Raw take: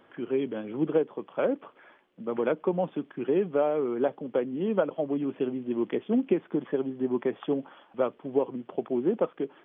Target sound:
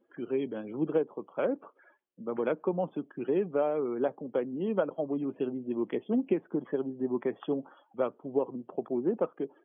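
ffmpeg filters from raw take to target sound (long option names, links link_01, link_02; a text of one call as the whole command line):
ffmpeg -i in.wav -af "afftdn=noise_reduction=22:noise_floor=-50,volume=-3dB" out.wav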